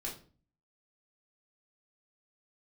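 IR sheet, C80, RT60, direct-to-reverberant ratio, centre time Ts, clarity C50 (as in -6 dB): 13.5 dB, 0.40 s, -4.5 dB, 24 ms, 8.5 dB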